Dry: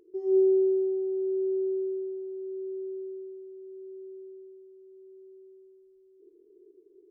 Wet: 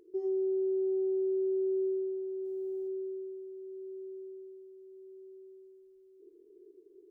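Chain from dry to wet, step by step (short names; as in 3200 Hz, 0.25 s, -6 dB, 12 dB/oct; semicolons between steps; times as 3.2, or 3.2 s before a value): 2.44–2.87 spectral limiter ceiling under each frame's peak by 15 dB; limiter -27 dBFS, peak gain reduction 10.5 dB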